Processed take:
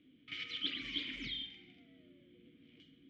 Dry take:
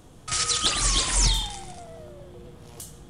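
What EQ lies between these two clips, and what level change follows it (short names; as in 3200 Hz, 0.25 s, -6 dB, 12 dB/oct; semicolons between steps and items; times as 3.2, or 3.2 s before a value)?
vowel filter i; ladder low-pass 3800 Hz, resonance 35%; +5.0 dB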